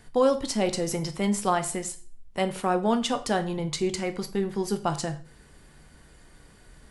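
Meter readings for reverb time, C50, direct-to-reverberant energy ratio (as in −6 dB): 0.45 s, 14.5 dB, 8.0 dB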